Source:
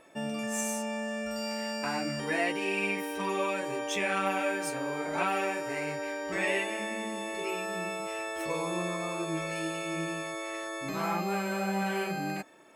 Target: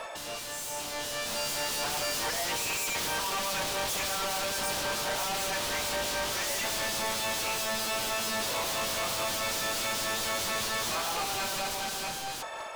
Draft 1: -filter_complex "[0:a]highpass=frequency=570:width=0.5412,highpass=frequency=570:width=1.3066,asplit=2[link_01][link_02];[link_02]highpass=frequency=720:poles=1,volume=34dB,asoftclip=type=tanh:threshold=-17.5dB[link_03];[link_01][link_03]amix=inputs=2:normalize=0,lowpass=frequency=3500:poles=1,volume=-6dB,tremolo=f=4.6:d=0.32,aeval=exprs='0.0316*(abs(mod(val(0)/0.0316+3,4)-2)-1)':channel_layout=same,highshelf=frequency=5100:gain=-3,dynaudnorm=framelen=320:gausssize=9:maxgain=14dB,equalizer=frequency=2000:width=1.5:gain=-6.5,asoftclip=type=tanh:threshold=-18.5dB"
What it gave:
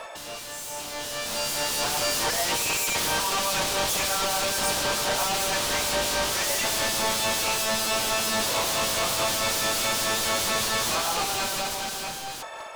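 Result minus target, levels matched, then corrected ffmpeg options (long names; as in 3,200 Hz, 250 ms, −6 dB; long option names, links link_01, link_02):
soft clipping: distortion −12 dB
-filter_complex "[0:a]highpass=frequency=570:width=0.5412,highpass=frequency=570:width=1.3066,asplit=2[link_01][link_02];[link_02]highpass=frequency=720:poles=1,volume=34dB,asoftclip=type=tanh:threshold=-17.5dB[link_03];[link_01][link_03]amix=inputs=2:normalize=0,lowpass=frequency=3500:poles=1,volume=-6dB,tremolo=f=4.6:d=0.32,aeval=exprs='0.0316*(abs(mod(val(0)/0.0316+3,4)-2)-1)':channel_layout=same,highshelf=frequency=5100:gain=-3,dynaudnorm=framelen=320:gausssize=9:maxgain=14dB,equalizer=frequency=2000:width=1.5:gain=-6.5,asoftclip=type=tanh:threshold=-29.5dB"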